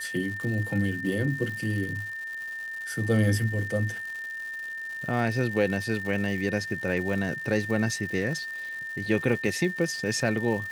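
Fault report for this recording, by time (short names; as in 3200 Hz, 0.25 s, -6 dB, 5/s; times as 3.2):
crackle 300/s -36 dBFS
tone 1800 Hz -33 dBFS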